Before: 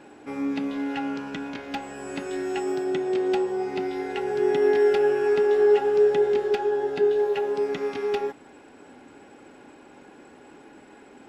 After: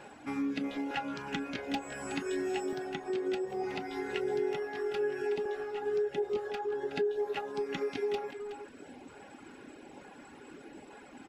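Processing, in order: reverb removal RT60 0.78 s; compression 5:1, threshold -31 dBFS, peak gain reduction 13.5 dB; LFO notch saw up 1.1 Hz 270–1700 Hz; speakerphone echo 370 ms, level -7 dB; trim +1.5 dB

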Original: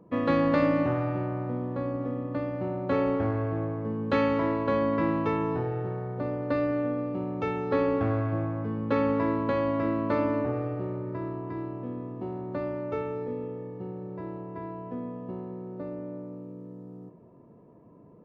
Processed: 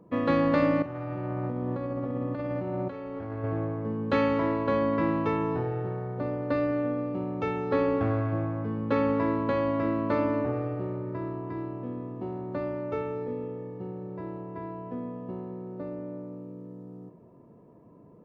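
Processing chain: 0.82–3.44 s: compressor with a negative ratio -33 dBFS, ratio -1

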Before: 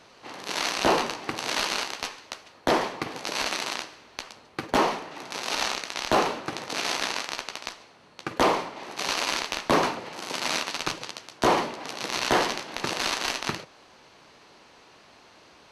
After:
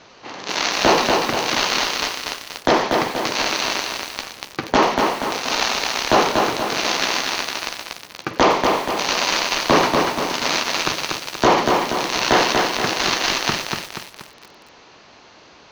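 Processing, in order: steep low-pass 7 kHz 72 dB/octave; feedback echo behind a high-pass 90 ms, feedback 48%, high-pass 2.6 kHz, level -12 dB; bit-crushed delay 239 ms, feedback 55%, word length 7-bit, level -3 dB; trim +6.5 dB

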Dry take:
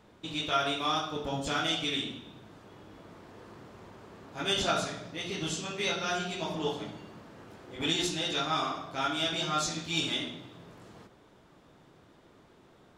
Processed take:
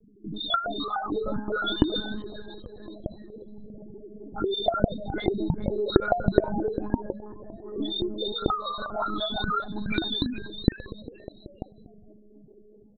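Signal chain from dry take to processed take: 2.13–3.63 s: one-bit delta coder 16 kbps, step -46.5 dBFS; level-controlled noise filter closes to 900 Hz, open at -29 dBFS; level rider gain up to 5 dB; loudest bins only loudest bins 1; compression 12:1, threshold -41 dBFS, peak gain reduction 13.5 dB; frequency-shifting echo 410 ms, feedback 41%, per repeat +110 Hz, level -13 dB; monotone LPC vocoder at 8 kHz 210 Hz; loudness maximiser +16.5 dB; trim -1 dB

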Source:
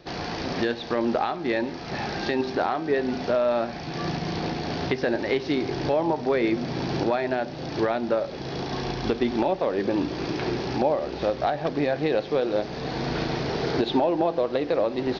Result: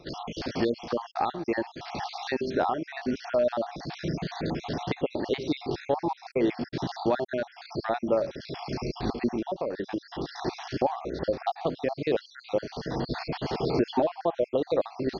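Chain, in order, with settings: random holes in the spectrogram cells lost 55%; dynamic bell 2.1 kHz, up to -3 dB, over -42 dBFS, Q 0.82; 9.31–10.45 s: compression 3:1, threshold -28 dBFS, peak gain reduction 6 dB

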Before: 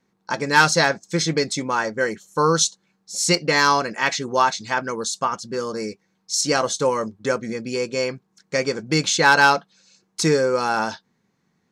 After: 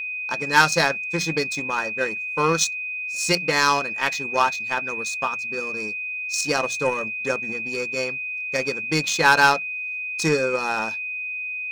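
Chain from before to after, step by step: power-law waveshaper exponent 1.4; hum notches 60/120/180 Hz; whistle 2.5 kHz -27 dBFS

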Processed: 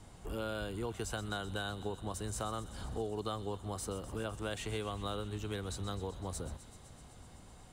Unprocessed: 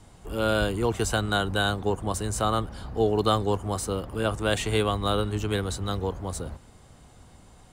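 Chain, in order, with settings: compression 4:1, threshold -34 dBFS, peak gain reduction 14 dB; on a send: feedback echo behind a high-pass 127 ms, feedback 80%, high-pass 2.8 kHz, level -13 dB; on the sum: trim -3 dB

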